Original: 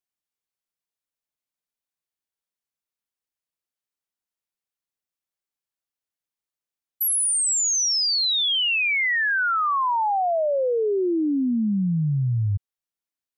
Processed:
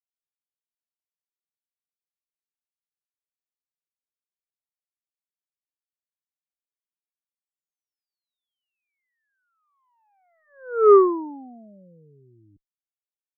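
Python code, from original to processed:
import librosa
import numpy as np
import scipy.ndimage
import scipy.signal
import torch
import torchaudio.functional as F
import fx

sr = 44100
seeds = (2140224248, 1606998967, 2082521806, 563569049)

y = fx.lowpass_res(x, sr, hz=410.0, q=4.9)
y = fx.cheby_harmonics(y, sr, harmonics=(3, 4, 5), levels_db=(-9, -45, -42), full_scale_db=-5.0)
y = y * 10.0 ** (-1.5 / 20.0)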